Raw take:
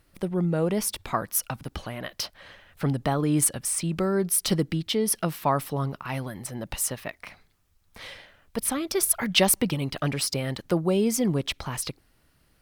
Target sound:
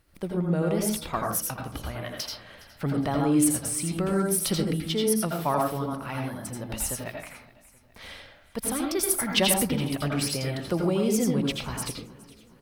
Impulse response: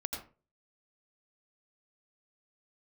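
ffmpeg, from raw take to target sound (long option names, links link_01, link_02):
-filter_complex "[0:a]aecho=1:1:415|830|1245|1660:0.0891|0.0437|0.0214|0.0105[link_01];[1:a]atrim=start_sample=2205[link_02];[link_01][link_02]afir=irnorm=-1:irlink=0,volume=-2dB"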